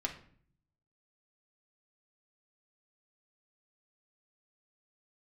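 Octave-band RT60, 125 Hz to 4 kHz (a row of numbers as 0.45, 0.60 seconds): 1.1, 0.85, 0.55, 0.50, 0.50, 0.40 seconds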